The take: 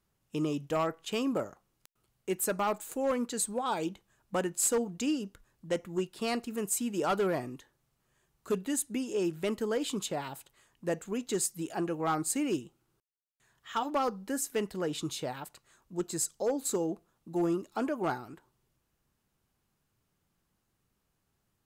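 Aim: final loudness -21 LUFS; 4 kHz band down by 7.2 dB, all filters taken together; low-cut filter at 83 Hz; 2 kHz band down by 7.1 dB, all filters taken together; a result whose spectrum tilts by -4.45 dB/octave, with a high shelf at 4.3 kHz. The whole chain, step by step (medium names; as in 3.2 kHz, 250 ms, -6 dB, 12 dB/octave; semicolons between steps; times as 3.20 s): high-pass 83 Hz; peaking EQ 2 kHz -8 dB; peaking EQ 4 kHz -3.5 dB; treble shelf 4.3 kHz -5.5 dB; trim +13 dB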